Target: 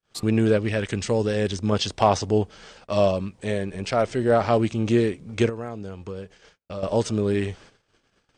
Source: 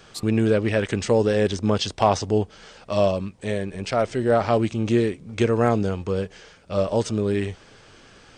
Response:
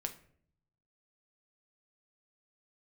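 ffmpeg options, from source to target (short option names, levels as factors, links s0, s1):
-filter_complex "[0:a]asettb=1/sr,asplit=3[s0][s1][s2];[s0]atrim=end=0.574[s3];[s1]atrim=start=0.57:end=1.72,asetpts=PTS-STARTPTS,afade=t=in:d=0.004:c=qsin,afade=t=out:st=1.146:d=0.004:c=qsin,equalizer=f=640:w=0.36:g=-4.5[s4];[s2]atrim=start=1.716[s5];[s3][s4]acrossfade=d=0.004:c1=hsin:c2=qsin[s6];[s6][s5]acrossfade=d=0.004:c1=qsin:c2=hsin,asettb=1/sr,asplit=3[s7][s8][s9];[s7]atrim=end=5.494[s10];[s8]atrim=start=5.49:end=6.83,asetpts=PTS-STARTPTS,afade=t=in:d=0.004:c=qsin,afade=t=out:st=1.336:d=0.004:c=qsin,acompressor=threshold=0.02:ratio=3[s11];[s9]atrim=start=6.826[s12];[s10][s11]acrossfade=d=0.004:c1=hsin:c2=qsin[s13];[s13][s12]acrossfade=d=0.004:c1=qsin:c2=hsin,agate=range=0.00794:threshold=0.00501:ratio=16:detection=peak"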